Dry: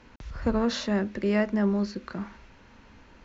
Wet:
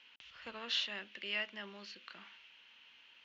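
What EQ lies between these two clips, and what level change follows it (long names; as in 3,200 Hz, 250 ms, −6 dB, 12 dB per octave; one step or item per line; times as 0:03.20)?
resonant band-pass 3,000 Hz, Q 5.8
+8.5 dB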